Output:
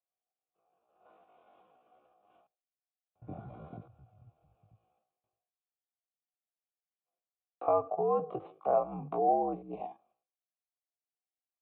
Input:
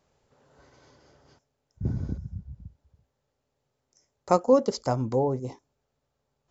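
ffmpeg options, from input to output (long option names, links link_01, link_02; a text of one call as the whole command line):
ffmpeg -i in.wav -filter_complex "[0:a]agate=range=-33dB:threshold=-51dB:ratio=3:detection=peak,lowshelf=frequency=130:width_type=q:width=3:gain=-11,acrossover=split=280|2400[link_01][link_02][link_03];[link_03]acompressor=threshold=-60dB:ratio=6[link_04];[link_01][link_02][link_04]amix=inputs=3:normalize=0,alimiter=limit=-19.5dB:level=0:latency=1:release=103,acontrast=67,afreqshift=-71,asplit=3[link_05][link_06][link_07];[link_05]bandpass=frequency=730:width_type=q:width=8,volume=0dB[link_08];[link_06]bandpass=frequency=1090:width_type=q:width=8,volume=-6dB[link_09];[link_07]bandpass=frequency=2440:width_type=q:width=8,volume=-9dB[link_10];[link_08][link_09][link_10]amix=inputs=3:normalize=0,atempo=0.56,aresample=8000,aresample=44100,volume=6.5dB" out.wav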